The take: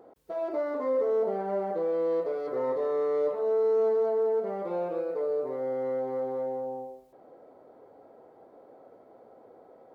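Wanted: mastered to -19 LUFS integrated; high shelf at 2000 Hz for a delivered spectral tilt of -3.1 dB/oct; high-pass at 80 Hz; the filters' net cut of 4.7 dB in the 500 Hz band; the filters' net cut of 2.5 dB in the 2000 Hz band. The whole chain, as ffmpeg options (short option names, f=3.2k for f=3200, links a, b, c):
-af "highpass=80,equalizer=f=500:t=o:g=-5.5,highshelf=f=2k:g=9,equalizer=f=2k:t=o:g=-8,volume=14.5dB"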